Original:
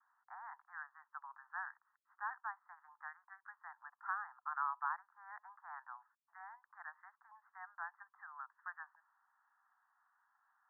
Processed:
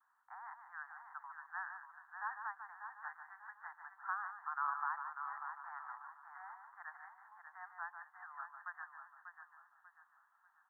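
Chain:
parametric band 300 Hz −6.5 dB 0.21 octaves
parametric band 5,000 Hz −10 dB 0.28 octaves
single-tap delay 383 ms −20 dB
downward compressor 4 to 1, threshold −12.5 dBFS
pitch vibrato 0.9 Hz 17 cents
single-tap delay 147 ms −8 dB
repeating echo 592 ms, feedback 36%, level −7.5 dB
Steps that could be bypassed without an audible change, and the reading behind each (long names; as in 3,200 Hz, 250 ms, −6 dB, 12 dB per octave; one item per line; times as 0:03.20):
parametric band 300 Hz: nothing at its input below 640 Hz
parametric band 5,000 Hz: nothing at its input above 2,000 Hz
downward compressor, threshold −12.5 dBFS: peak of its input −26.5 dBFS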